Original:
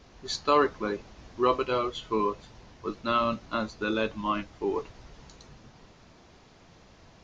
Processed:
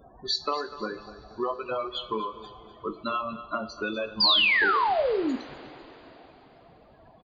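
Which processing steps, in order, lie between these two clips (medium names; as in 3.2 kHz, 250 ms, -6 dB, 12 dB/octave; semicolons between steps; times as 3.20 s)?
loudest bins only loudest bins 32; peaking EQ 710 Hz +9.5 dB 0.38 oct; compression 6:1, threshold -30 dBFS, peak gain reduction 13.5 dB; reverb removal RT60 1.5 s; feedback delay 248 ms, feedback 40%, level -15.5 dB; painted sound fall, 4.20–5.36 s, 240–5000 Hz -28 dBFS; tilt EQ +1.5 dB/octave; two-slope reverb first 0.35 s, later 4 s, from -18 dB, DRR 7.5 dB; trim +4 dB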